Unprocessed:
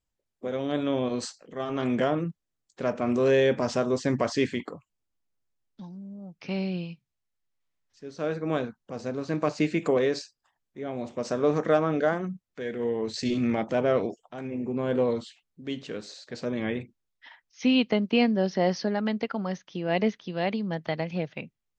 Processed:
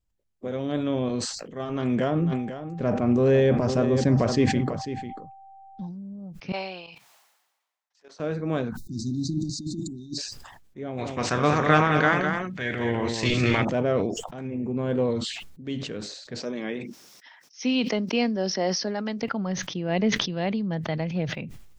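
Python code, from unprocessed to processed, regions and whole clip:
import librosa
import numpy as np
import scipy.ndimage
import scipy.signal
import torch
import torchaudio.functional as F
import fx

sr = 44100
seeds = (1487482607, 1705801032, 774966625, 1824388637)

y = fx.tilt_eq(x, sr, slope=-1.5, at=(2.14, 5.86), fade=0.02)
y = fx.dmg_tone(y, sr, hz=780.0, level_db=-46.0, at=(2.14, 5.86), fade=0.02)
y = fx.echo_single(y, sr, ms=495, db=-11.5, at=(2.14, 5.86), fade=0.02)
y = fx.chain(y, sr, fx.highpass_res(hz=810.0, q=2.2),
    fx.level_steps(step_db=16), at=(6.52, 8.2))
y = fx.chain(y, sr, fx.high_shelf(hz=6600.0, db=6.5),
    fx.over_compress(threshold_db=-29.0, ratio=-0.5),
    fx.brickwall_bandstop(low_hz=370.0, high_hz=3600.0), at=(8.77, 10.18))
y = fx.spec_clip(y, sr, under_db=14, at=(10.97, 13.63), fade=0.02)
y = fx.peak_eq(y, sr, hz=2100.0, db=7.5, octaves=2.1, at=(10.97, 13.63), fade=0.02)
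y = fx.echo_single(y, sr, ms=205, db=-6.0, at=(10.97, 13.63), fade=0.02)
y = fx.chain(y, sr, fx.bessel_highpass(hz=290.0, order=4),
    fx.peak_eq(hz=5500.0, db=11.5, octaves=0.4), at=(16.4, 19.22))
y = fx.low_shelf(y, sr, hz=180.0, db=10.5)
y = fx.sustainer(y, sr, db_per_s=48.0)
y = y * 10.0 ** (-2.0 / 20.0)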